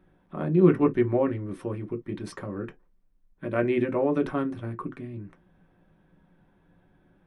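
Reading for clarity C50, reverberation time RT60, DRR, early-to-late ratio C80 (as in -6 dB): 21.5 dB, not exponential, 3.0 dB, 60.0 dB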